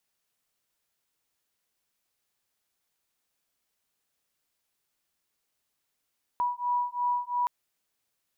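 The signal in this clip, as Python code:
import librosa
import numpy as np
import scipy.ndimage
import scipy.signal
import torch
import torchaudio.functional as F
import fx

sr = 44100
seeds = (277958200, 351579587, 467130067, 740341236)

y = fx.two_tone_beats(sr, length_s=1.07, hz=974.0, beat_hz=2.9, level_db=-29.0)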